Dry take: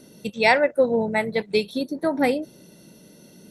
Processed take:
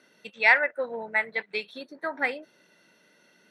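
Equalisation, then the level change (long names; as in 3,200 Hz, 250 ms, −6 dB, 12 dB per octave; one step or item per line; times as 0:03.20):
resonant band-pass 1,700 Hz, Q 2
+4.0 dB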